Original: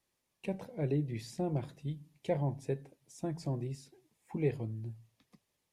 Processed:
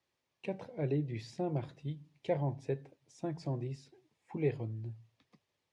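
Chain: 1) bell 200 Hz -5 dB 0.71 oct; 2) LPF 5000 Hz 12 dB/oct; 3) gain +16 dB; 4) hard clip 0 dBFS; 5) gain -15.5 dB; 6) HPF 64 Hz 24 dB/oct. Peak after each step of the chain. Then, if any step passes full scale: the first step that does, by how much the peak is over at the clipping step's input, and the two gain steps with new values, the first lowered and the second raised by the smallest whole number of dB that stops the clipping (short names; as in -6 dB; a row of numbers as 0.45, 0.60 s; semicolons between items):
-20.5, -20.5, -4.5, -4.5, -20.0, -20.5 dBFS; no overload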